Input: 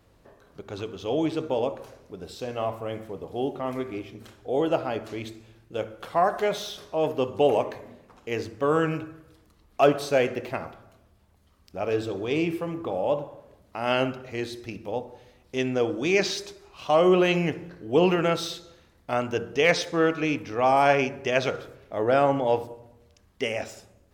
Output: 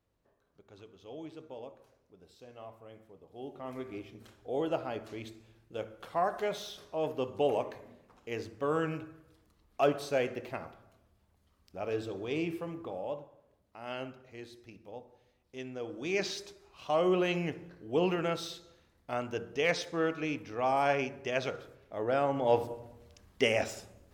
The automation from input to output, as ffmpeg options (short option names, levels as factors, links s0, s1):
-af "volume=2.66,afade=t=in:st=3.3:d=0.66:silence=0.281838,afade=t=out:st=12.65:d=0.64:silence=0.421697,afade=t=in:st=15.81:d=0.43:silence=0.446684,afade=t=in:st=22.33:d=0.4:silence=0.334965"